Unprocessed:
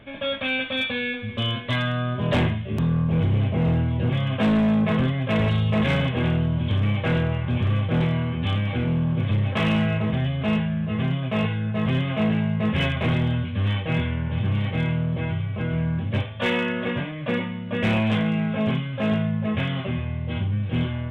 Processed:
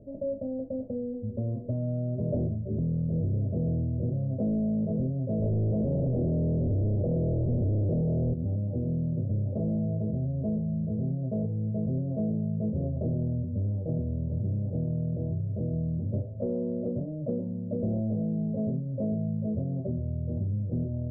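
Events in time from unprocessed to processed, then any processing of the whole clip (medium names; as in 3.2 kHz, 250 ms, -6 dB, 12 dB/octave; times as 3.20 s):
5.42–8.34 s: waveshaping leveller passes 5
whole clip: Chebyshev low-pass 620 Hz, order 5; compression 3:1, threshold -26 dBFS; trim -1 dB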